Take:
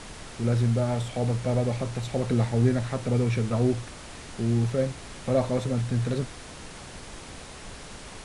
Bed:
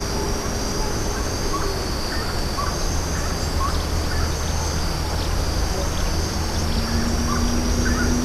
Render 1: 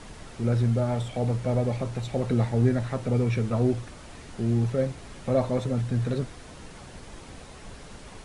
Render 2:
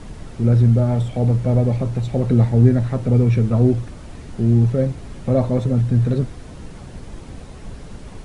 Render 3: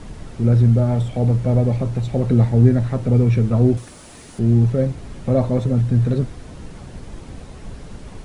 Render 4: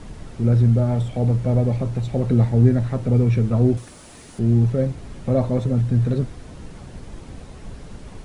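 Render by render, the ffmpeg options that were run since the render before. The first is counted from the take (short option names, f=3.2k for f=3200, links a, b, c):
-af "afftdn=nr=6:nf=-43"
-af "lowshelf=f=440:g=11"
-filter_complex "[0:a]asettb=1/sr,asplit=3[a][b][c];[a]atrim=end=3.774[d];[b]atrim=start=3.77:end=4.39,asetpts=PTS-STARTPTS,afade=t=in:d=0.004:c=qsin,afade=t=out:st=0.616:d=0.004:c=qsin,aemphasis=mode=production:type=bsi[e];[c]atrim=start=4.386[f];[d][e]acrossfade=d=0.004:c1=hsin:c2=qsin[g];[g][f]acrossfade=d=0.004:c1=qsin:c2=hsin"
-af "volume=-2dB"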